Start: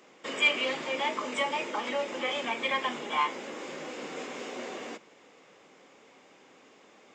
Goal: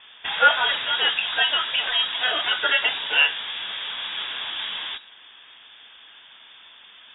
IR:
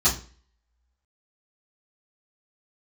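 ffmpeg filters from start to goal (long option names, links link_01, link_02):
-filter_complex "[0:a]equalizer=frequency=130:width=1.3:gain=7,acrossover=split=510|1300[link_01][link_02][link_03];[link_01]aeval=exprs='clip(val(0),-1,0.00447)':channel_layout=same[link_04];[link_04][link_02][link_03]amix=inputs=3:normalize=0,lowpass=frequency=3200:width_type=q:width=0.5098,lowpass=frequency=3200:width_type=q:width=0.6013,lowpass=frequency=3200:width_type=q:width=0.9,lowpass=frequency=3200:width_type=q:width=2.563,afreqshift=-3800,volume=9dB"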